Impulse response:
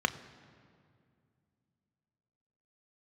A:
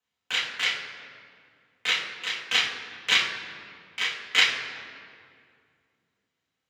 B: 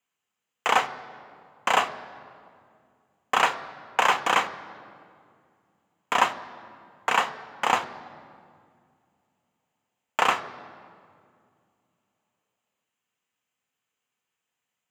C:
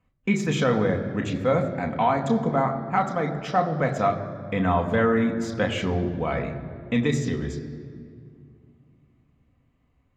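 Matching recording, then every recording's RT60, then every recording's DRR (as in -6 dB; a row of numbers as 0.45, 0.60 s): B; 2.3, 2.3, 2.3 s; -5.5, 8.5, 3.0 dB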